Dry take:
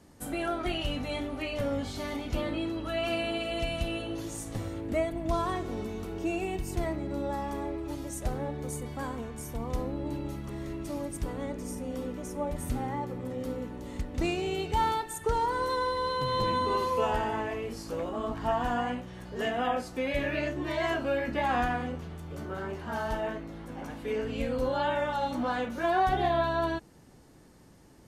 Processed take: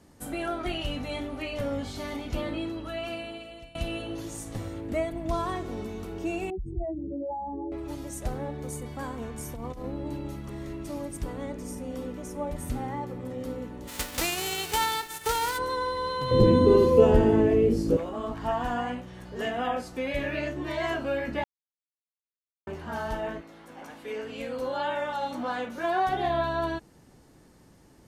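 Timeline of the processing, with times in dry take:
0:02.59–0:03.75: fade out, to −22 dB
0:06.50–0:07.72: expanding power law on the bin magnitudes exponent 3.3
0:09.21–0:09.84: compressor whose output falls as the input rises −36 dBFS
0:13.87–0:15.57: spectral envelope flattened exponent 0.3
0:16.31–0:17.97: low shelf with overshoot 600 Hz +13.5 dB, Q 1.5
0:21.44–0:22.67: silence
0:23.40–0:26.26: high-pass filter 690 Hz → 160 Hz 6 dB per octave

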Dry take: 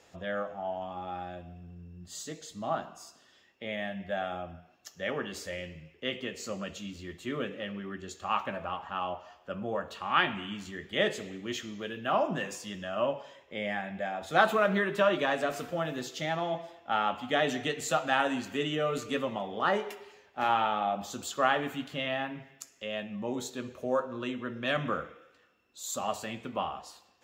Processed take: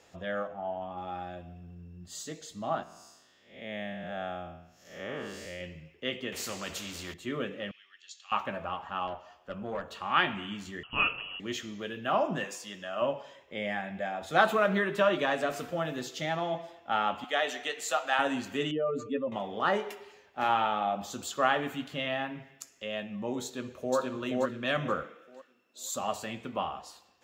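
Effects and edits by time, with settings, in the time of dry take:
0:00.47–0:00.98: high-shelf EQ 3,800 Hz −11 dB
0:02.83–0:05.61: spectrum smeared in time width 210 ms
0:06.32–0:07.14: every bin compressed towards the loudest bin 2 to 1
0:07.71–0:08.32: flat-topped band-pass 4,200 Hz, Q 1
0:09.07–0:09.92: tube saturation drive 27 dB, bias 0.45
0:10.83–0:11.40: voice inversion scrambler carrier 3,100 Hz
0:12.44–0:13.02: high-pass filter 390 Hz 6 dB per octave
0:17.24–0:18.19: high-pass filter 560 Hz
0:18.71–0:19.32: expanding power law on the bin magnitudes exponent 1.9
0:23.44–0:23.97: delay throw 480 ms, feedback 30%, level −1 dB
0:25.03–0:25.81: high-pass filter 170 Hz 24 dB per octave

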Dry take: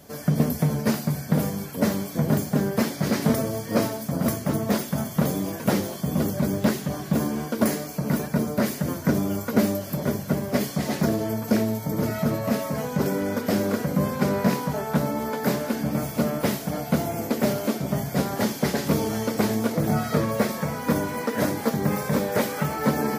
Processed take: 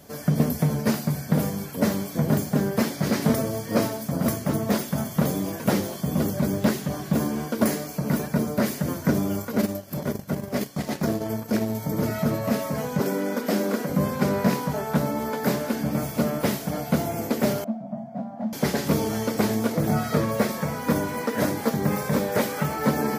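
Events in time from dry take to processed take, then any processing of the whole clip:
0:09.42–0:11.75: transient designer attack −5 dB, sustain −12 dB
0:13.00–0:13.90: high-pass filter 180 Hz 24 dB per octave
0:17.64–0:18.53: pair of resonant band-passes 390 Hz, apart 1.6 octaves

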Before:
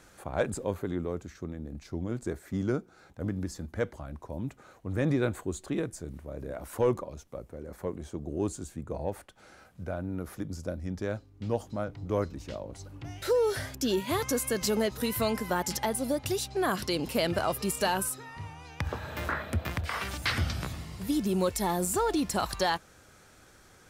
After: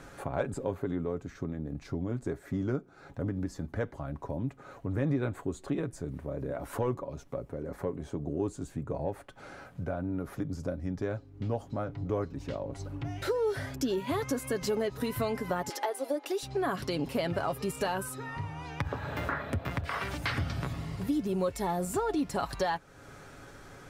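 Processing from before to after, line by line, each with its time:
0:15.69–0:16.43: elliptic high-pass filter 310 Hz
whole clip: high-shelf EQ 3,100 Hz −11 dB; comb filter 7.2 ms, depth 42%; downward compressor 2 to 1, threshold −45 dBFS; level +8.5 dB

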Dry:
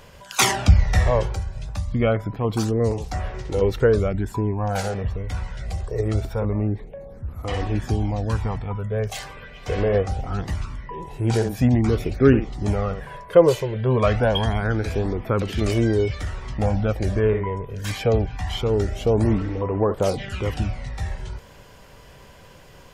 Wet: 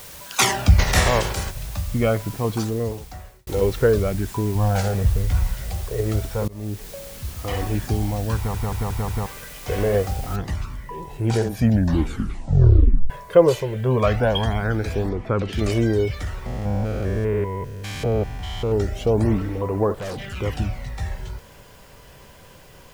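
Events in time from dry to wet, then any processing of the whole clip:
0:00.78–0:01.50: compressing power law on the bin magnitudes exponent 0.57
0:02.44–0:03.47: fade out
0:04.55–0:05.54: low-shelf EQ 150 Hz +10 dB
0:06.48–0:06.89: fade in, from −23.5 dB
0:08.36: stutter in place 0.18 s, 5 plays
0:10.36: noise floor change −41 dB −57 dB
0:11.55: tape stop 1.55 s
0:15.09–0:15.53: high-frequency loss of the air 80 metres
0:16.46–0:18.72: spectrum averaged block by block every 200 ms
0:19.95–0:20.37: gain into a clipping stage and back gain 28 dB

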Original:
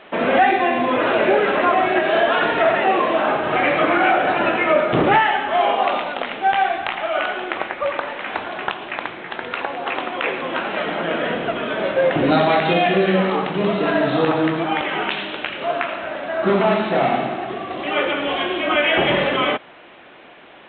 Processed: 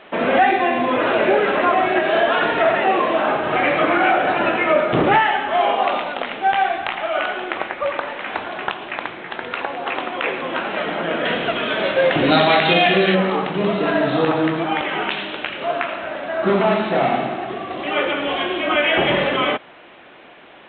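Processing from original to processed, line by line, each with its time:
0:11.25–0:13.15: high-shelf EQ 2,600 Hz +12 dB

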